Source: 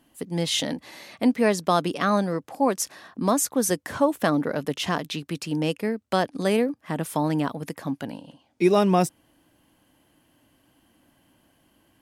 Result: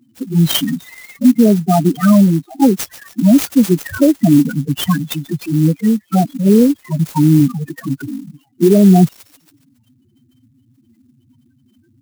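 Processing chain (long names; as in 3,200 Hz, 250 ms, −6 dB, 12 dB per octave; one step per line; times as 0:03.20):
on a send: delay with a high-pass on its return 139 ms, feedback 55%, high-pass 5,500 Hz, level −9 dB
on the sum: flanger swept by the level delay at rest 8.7 ms, full sweep at −18.5 dBFS
high-pass filter 63 Hz 24 dB per octave
parametric band 530 Hz −8 dB 1.4 octaves
spectral peaks only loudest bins 4
boost into a limiter +20.5 dB
converter with an unsteady clock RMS 0.042 ms
level −1 dB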